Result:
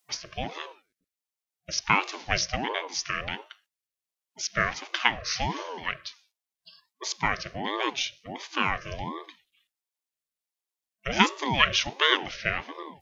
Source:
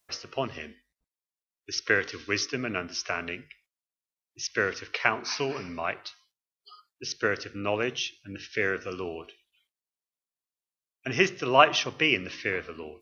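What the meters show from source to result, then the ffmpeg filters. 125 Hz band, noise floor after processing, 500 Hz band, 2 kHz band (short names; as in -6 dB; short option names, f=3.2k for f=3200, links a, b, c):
+1.5 dB, under -85 dBFS, -6.5 dB, +0.5 dB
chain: -af "afftfilt=real='re*(1-between(b*sr/4096,440,1300))':imag='im*(1-between(b*sr/4096,440,1300))':win_size=4096:overlap=0.75,aeval=exprs='val(0)*sin(2*PI*500*n/s+500*0.55/1.4*sin(2*PI*1.4*n/s))':c=same,volume=5dB"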